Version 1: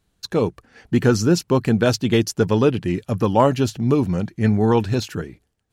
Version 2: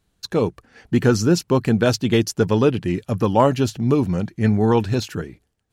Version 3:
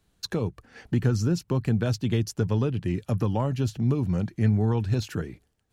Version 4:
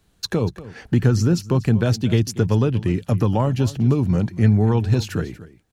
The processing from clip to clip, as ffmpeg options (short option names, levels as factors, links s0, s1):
-af anull
-filter_complex "[0:a]acrossover=split=150[s0][s1];[s1]acompressor=threshold=0.0355:ratio=4[s2];[s0][s2]amix=inputs=2:normalize=0"
-af "aecho=1:1:239:0.141,volume=2.11"